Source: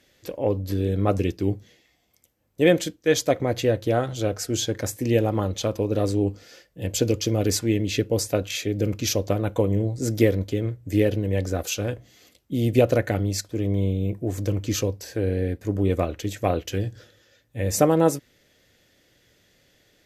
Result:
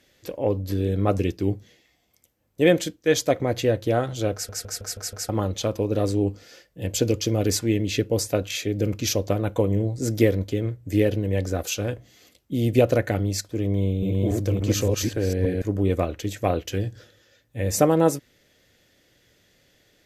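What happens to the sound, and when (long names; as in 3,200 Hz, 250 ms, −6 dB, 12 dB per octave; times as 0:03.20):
0:04.33: stutter in place 0.16 s, 6 plays
0:13.74–0:15.62: delay that plays each chunk backwards 286 ms, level −0.5 dB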